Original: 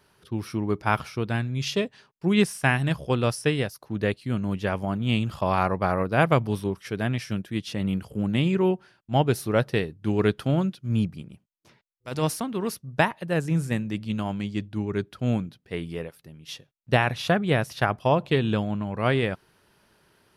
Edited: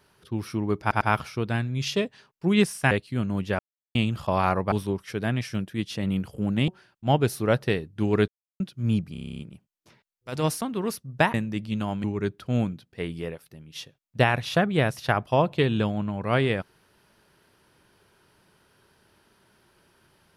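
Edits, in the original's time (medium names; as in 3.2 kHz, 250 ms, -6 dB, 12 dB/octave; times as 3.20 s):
0.81 s: stutter 0.10 s, 3 plays
2.71–4.05 s: delete
4.73–5.09 s: mute
5.86–6.49 s: delete
8.45–8.74 s: delete
10.34–10.66 s: mute
11.18 s: stutter 0.03 s, 10 plays
13.13–13.72 s: delete
14.42–14.77 s: delete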